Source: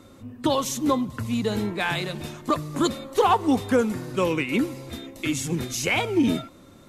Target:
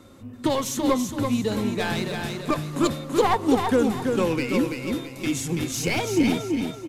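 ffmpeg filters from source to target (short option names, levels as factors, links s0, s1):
-filter_complex "[0:a]acrossover=split=730|6400[s0][s1][s2];[s1]aeval=exprs='clip(val(0),-1,0.0178)':c=same[s3];[s0][s3][s2]amix=inputs=3:normalize=0,aecho=1:1:333|666|999|1332:0.562|0.197|0.0689|0.0241"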